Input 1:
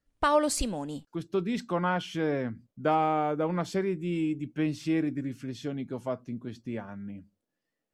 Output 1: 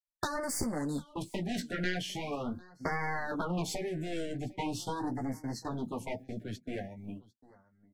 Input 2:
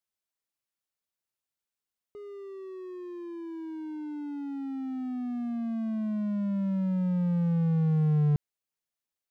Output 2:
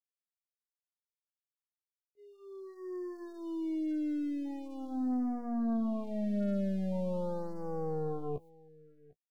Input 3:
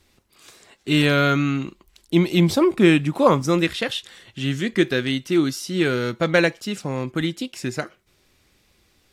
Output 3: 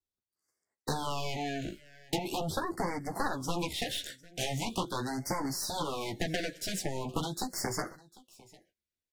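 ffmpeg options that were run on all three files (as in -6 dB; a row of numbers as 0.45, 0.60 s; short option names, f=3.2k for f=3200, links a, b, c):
-filter_complex "[0:a]agate=range=-40dB:threshold=-40dB:ratio=16:detection=peak,highshelf=f=6.9k:g=9,acrossover=split=240|1200|2300[a][b][c][d];[d]alimiter=limit=-22.5dB:level=0:latency=1:release=51[e];[a][b][c][e]amix=inputs=4:normalize=0,acompressor=threshold=-27dB:ratio=12,adynamicequalizer=threshold=0.002:dfrequency=2500:dqfactor=2.6:tfrequency=2500:tqfactor=2.6:attack=5:release=100:ratio=0.375:range=3:mode=cutabove:tftype=bell,aeval=exprs='0.158*(cos(1*acos(clip(val(0)/0.158,-1,1)))-cos(1*PI/2))+0.0708*(cos(7*acos(clip(val(0)/0.158,-1,1)))-cos(7*PI/2))+0.00891*(cos(8*acos(clip(val(0)/0.158,-1,1)))-cos(8*PI/2))':c=same,flanger=delay=9.8:depth=7.5:regen=-17:speed=0.31:shape=triangular,aecho=1:1:750:0.075,afftfilt=real='re*(1-between(b*sr/1024,970*pow(3200/970,0.5+0.5*sin(2*PI*0.42*pts/sr))/1.41,970*pow(3200/970,0.5+0.5*sin(2*PI*0.42*pts/sr))*1.41))':imag='im*(1-between(b*sr/1024,970*pow(3200/970,0.5+0.5*sin(2*PI*0.42*pts/sr))/1.41,970*pow(3200/970,0.5+0.5*sin(2*PI*0.42*pts/sr))*1.41))':win_size=1024:overlap=0.75"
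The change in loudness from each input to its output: -6.0, -5.5, -14.0 LU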